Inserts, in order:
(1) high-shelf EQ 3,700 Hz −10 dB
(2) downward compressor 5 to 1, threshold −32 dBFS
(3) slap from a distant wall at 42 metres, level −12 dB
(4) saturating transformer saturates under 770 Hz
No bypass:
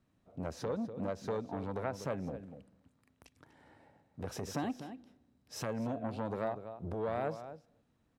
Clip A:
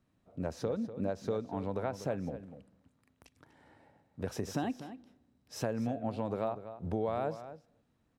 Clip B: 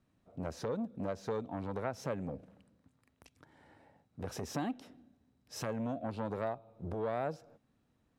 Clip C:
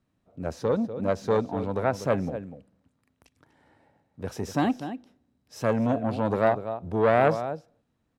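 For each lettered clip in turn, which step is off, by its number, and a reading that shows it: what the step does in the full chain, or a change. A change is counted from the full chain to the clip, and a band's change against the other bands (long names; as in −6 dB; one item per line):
4, 2 kHz band −2.5 dB
3, change in momentary loudness spread −3 LU
2, average gain reduction 8.5 dB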